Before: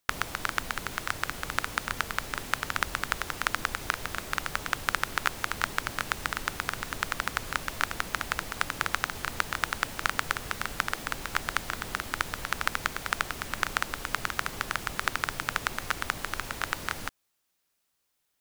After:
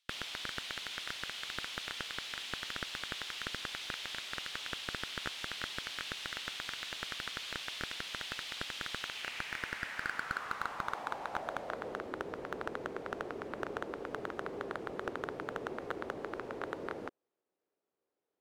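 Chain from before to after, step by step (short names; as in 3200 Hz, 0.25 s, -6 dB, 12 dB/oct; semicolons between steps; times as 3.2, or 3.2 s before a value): band-pass sweep 3300 Hz -> 420 Hz, 8.97–12.15; slew limiter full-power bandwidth 37 Hz; gain +7.5 dB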